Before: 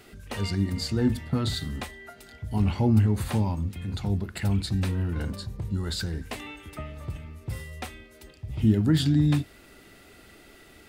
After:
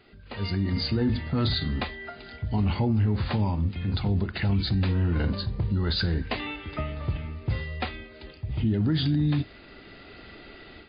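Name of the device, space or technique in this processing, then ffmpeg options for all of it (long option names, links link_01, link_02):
low-bitrate web radio: -af "dynaudnorm=framelen=360:gausssize=3:maxgain=11.5dB,alimiter=limit=-12dB:level=0:latency=1:release=19,volume=-5dB" -ar 11025 -c:a libmp3lame -b:a 24k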